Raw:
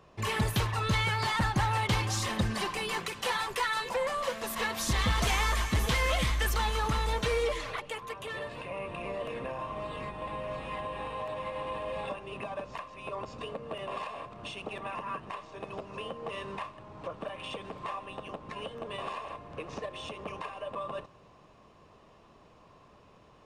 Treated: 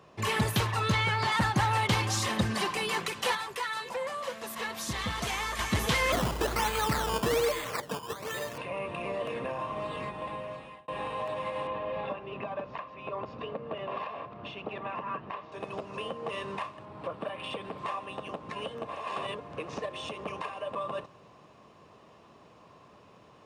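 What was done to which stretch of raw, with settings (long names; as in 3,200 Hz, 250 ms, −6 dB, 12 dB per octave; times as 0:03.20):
0:00.92–0:01.32: high-shelf EQ 7,200 Hz −11 dB
0:03.35–0:05.59: clip gain −6 dB
0:06.12–0:08.58: sample-and-hold swept by an LFO 15× 1.2 Hz
0:09.87–0:10.88: fade out equal-power
0:11.67–0:15.52: high-frequency loss of the air 250 metres
0:16.85–0:17.79: parametric band 6,400 Hz −9.5 dB 0.58 octaves
0:18.85–0:19.40: reverse
whole clip: high-pass filter 99 Hz 12 dB per octave; level +2.5 dB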